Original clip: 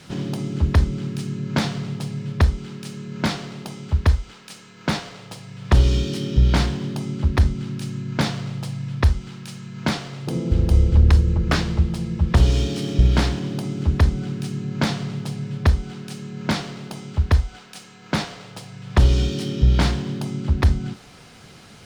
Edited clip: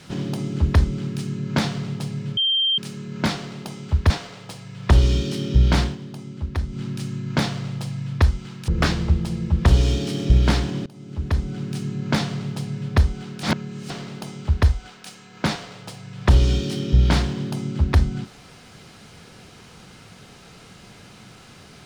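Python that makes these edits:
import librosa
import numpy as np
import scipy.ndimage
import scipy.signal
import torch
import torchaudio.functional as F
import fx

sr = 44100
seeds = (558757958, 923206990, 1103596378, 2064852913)

y = fx.edit(x, sr, fx.bleep(start_s=2.37, length_s=0.41, hz=3160.0, db=-17.0),
    fx.cut(start_s=4.1, length_s=0.82),
    fx.fade_down_up(start_s=6.66, length_s=0.98, db=-8.5, fade_s=0.14),
    fx.cut(start_s=9.5, length_s=1.87),
    fx.fade_in_from(start_s=13.55, length_s=0.93, floor_db=-23.5),
    fx.reverse_span(start_s=16.12, length_s=0.47), tone=tone)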